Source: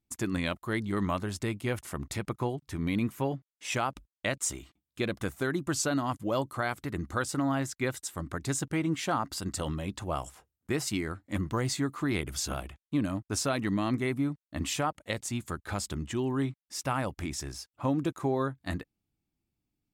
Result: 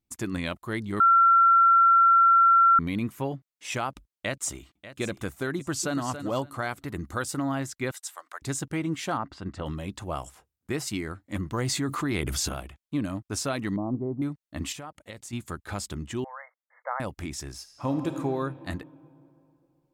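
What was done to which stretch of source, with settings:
0:01.00–0:02.79: beep over 1,360 Hz −14.5 dBFS
0:03.88–0:05.02: delay throw 590 ms, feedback 30%, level −14 dB
0:05.55–0:06.11: delay throw 280 ms, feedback 20%, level −9.5 dB
0:06.88–0:07.38: high-shelf EQ 10,000 Hz +7 dB
0:07.91–0:08.42: high-pass filter 680 Hz 24 dB per octave
0:09.17–0:09.66: low-pass filter 2,500 Hz
0:11.58–0:12.49: envelope flattener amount 70%
0:13.76–0:14.22: Butterworth low-pass 920 Hz
0:14.72–0:15.33: downward compressor 2.5 to 1, threshold −41 dBFS
0:16.24–0:17.00: linear-phase brick-wall band-pass 470–2,200 Hz
0:17.56–0:18.14: thrown reverb, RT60 2.8 s, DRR 5.5 dB

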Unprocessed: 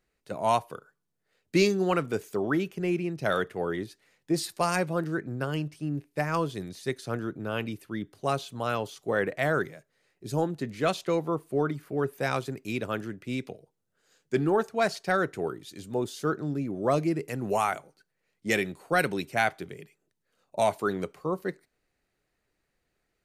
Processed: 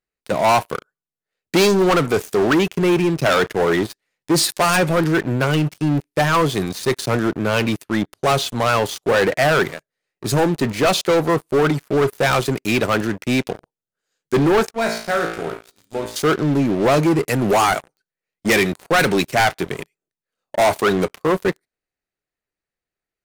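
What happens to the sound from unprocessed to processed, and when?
0:14.71–0:16.16: tuned comb filter 56 Hz, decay 0.77 s, mix 90%
whole clip: low-shelf EQ 430 Hz −4 dB; leveller curve on the samples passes 5

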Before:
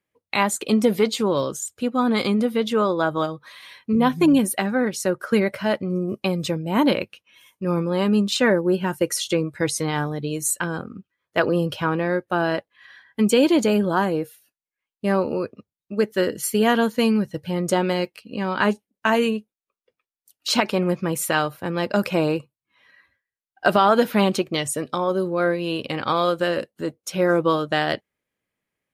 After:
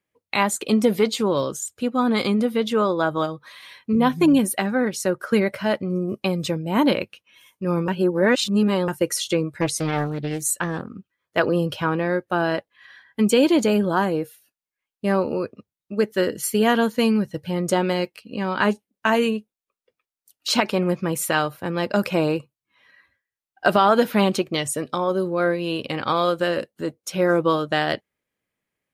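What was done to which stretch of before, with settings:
0:07.88–0:08.88: reverse
0:09.61–0:10.90: highs frequency-modulated by the lows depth 0.4 ms

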